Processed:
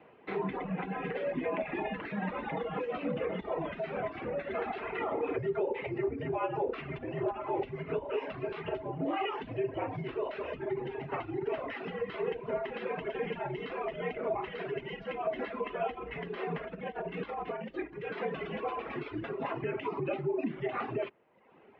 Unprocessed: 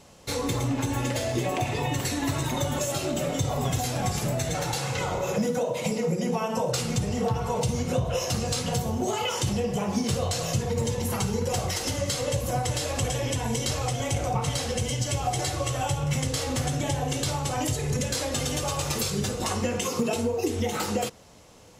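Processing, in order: reverb removal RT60 0.88 s; peak limiter -21 dBFS, peak gain reduction 6 dB; 16.63–18.21 s: compressor with a negative ratio -33 dBFS, ratio -0.5; mistuned SSB -89 Hz 280–2600 Hz; trim -1 dB

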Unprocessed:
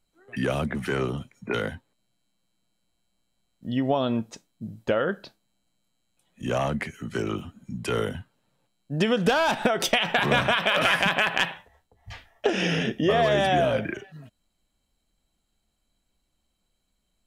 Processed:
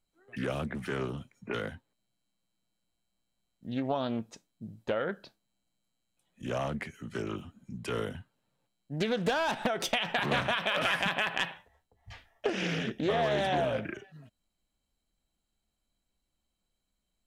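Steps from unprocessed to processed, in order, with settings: loudspeaker Doppler distortion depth 0.36 ms; trim -7 dB

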